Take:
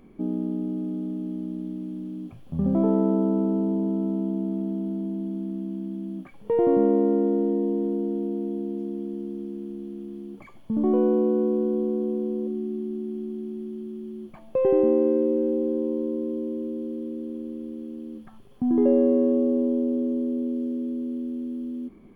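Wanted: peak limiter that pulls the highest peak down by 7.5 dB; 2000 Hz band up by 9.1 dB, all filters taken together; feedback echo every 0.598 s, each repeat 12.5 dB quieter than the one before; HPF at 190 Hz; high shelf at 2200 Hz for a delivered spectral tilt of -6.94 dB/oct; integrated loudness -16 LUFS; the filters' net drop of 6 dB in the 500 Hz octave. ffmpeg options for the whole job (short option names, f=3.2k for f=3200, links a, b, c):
-af "highpass=190,equalizer=f=500:t=o:g=-8.5,equalizer=f=2k:t=o:g=7.5,highshelf=f=2.2k:g=8,alimiter=limit=-21.5dB:level=0:latency=1,aecho=1:1:598|1196|1794:0.237|0.0569|0.0137,volume=15.5dB"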